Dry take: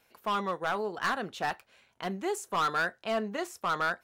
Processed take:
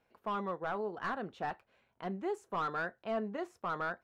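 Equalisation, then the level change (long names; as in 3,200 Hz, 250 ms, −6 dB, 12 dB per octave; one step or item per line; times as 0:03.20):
low-pass filter 1,000 Hz 6 dB per octave
−3.0 dB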